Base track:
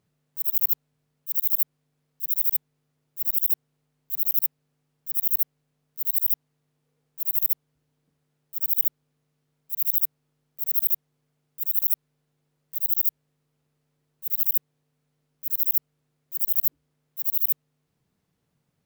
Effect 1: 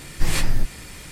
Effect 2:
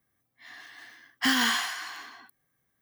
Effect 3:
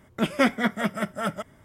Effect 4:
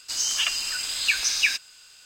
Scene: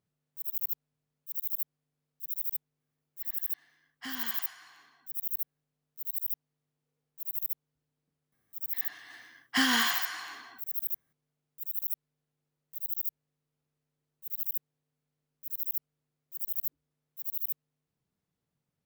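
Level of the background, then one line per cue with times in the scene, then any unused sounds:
base track −10.5 dB
0:02.80: mix in 2 −16 dB
0:08.32: mix in 2 −1.5 dB
not used: 1, 3, 4

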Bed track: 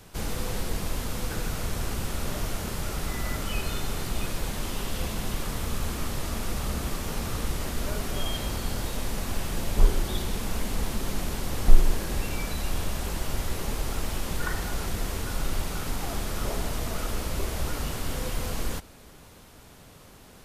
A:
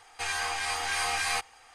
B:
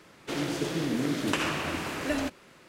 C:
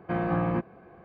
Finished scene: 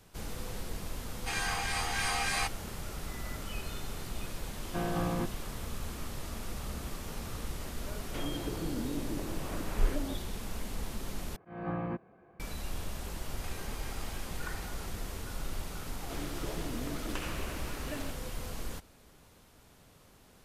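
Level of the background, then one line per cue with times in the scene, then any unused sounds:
bed track −9 dB
0:01.07: mix in A −3 dB
0:04.65: mix in C −6 dB
0:07.86: mix in B −7.5 dB + treble cut that deepens with the level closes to 570 Hz, closed at −25.5 dBFS
0:11.36: overwrite with C −8.5 dB + volume swells 227 ms
0:13.25: mix in A −11 dB + compressor whose output falls as the input rises −40 dBFS
0:15.82: mix in B −11.5 dB

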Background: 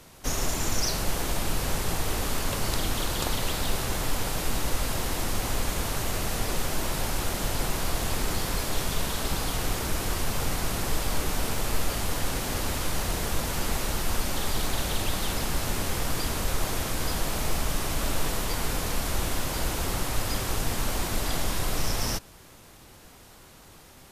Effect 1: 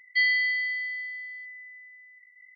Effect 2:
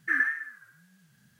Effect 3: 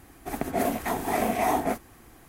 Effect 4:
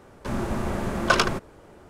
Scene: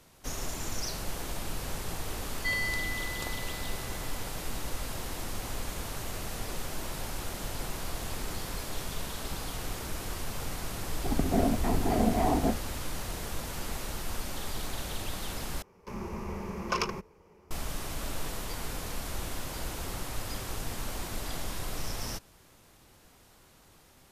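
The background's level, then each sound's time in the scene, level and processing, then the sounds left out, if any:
background −8 dB
0:02.29: mix in 1 −8.5 dB
0:10.78: mix in 3 −6.5 dB + spectral tilt −4.5 dB per octave
0:15.62: overwrite with 4 −11 dB + EQ curve with evenly spaced ripples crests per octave 0.81, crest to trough 10 dB
not used: 2

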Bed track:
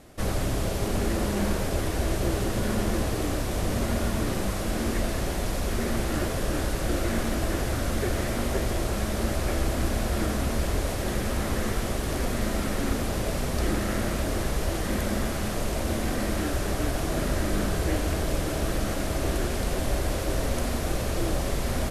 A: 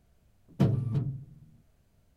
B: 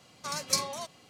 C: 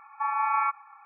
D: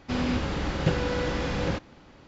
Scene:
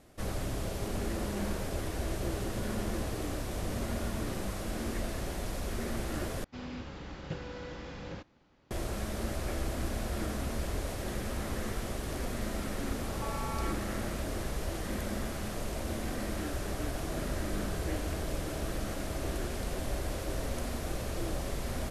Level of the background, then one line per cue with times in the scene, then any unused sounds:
bed track −8 dB
0:06.44: overwrite with D −14.5 dB
0:13.02: mix in C −2 dB + downward compressor, threshold −36 dBFS
not used: A, B

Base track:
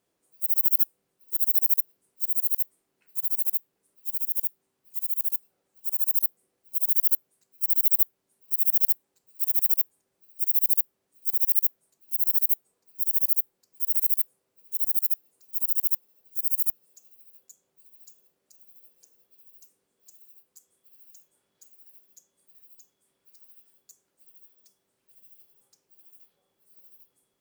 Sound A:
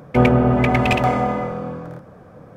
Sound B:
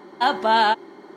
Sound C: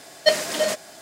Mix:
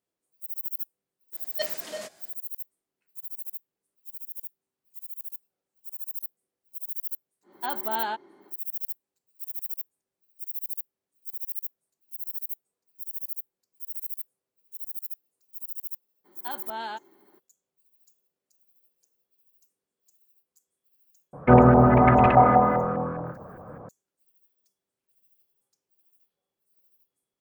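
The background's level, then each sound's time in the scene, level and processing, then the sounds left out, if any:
base track −11.5 dB
0:01.33: mix in C −14 dB
0:07.42: mix in B −12 dB, fades 0.10 s + high-shelf EQ 3,300 Hz −5 dB
0:16.24: mix in B −17.5 dB, fades 0.02 s
0:21.33: mix in A −1.5 dB + auto-filter low-pass saw up 4.9 Hz 830–1,700 Hz

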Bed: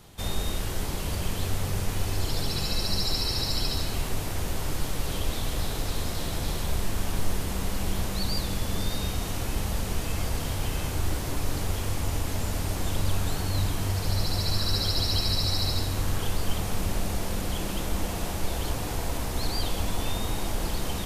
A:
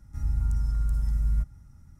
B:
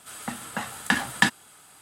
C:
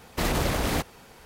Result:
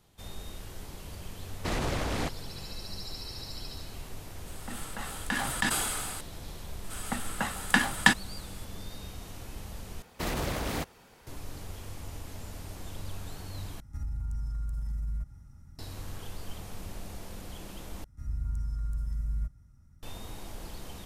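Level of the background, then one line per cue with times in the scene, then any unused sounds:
bed −13 dB
0:01.47: mix in C −5.5 dB + Bessel low-pass filter 8,300 Hz, order 4
0:04.40: mix in B −11 dB + level that may fall only so fast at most 27 dB per second
0:06.84: mix in B −0.5 dB
0:10.02: overwrite with C −6.5 dB
0:13.80: overwrite with A −0.5 dB + brickwall limiter −28 dBFS
0:18.04: overwrite with A −7 dB + notch filter 840 Hz, Q 11

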